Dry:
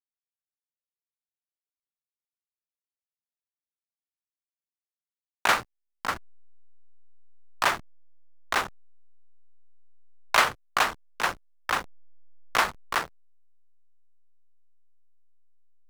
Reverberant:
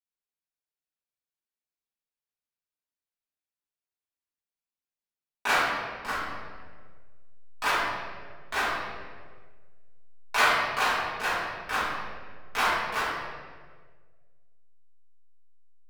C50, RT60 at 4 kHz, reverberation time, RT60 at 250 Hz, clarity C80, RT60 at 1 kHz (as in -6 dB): -1.0 dB, 1.1 s, 1.6 s, 1.6 s, 1.5 dB, 1.4 s